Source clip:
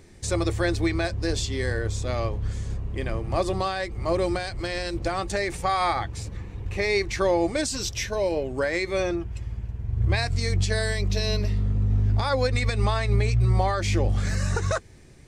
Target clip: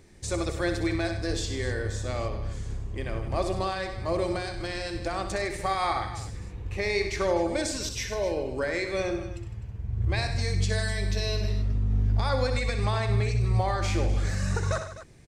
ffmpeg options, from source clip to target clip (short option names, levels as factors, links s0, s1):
-af "aecho=1:1:63|99|156|253:0.355|0.251|0.2|0.188,volume=0.631"